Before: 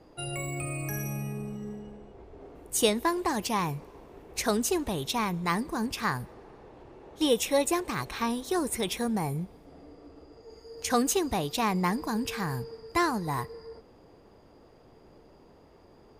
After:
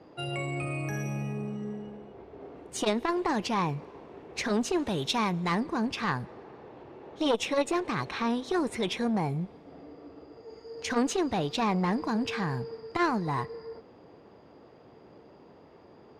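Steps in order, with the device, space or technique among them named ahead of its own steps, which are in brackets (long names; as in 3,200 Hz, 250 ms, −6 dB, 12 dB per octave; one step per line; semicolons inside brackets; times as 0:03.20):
valve radio (band-pass filter 110–4,200 Hz; tube saturation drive 17 dB, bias 0.35; saturating transformer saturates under 580 Hz)
0:04.78–0:05.55: high-shelf EQ 5,500 Hz +9.5 dB
level +4 dB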